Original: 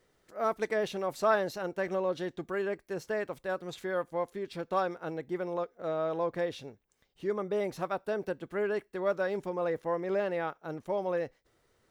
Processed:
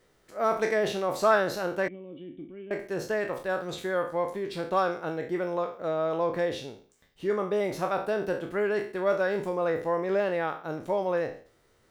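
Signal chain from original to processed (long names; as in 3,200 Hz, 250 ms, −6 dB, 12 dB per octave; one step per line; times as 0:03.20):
peak hold with a decay on every bin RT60 0.44 s
0:01.88–0:02.71: formant resonators in series i
level +3.5 dB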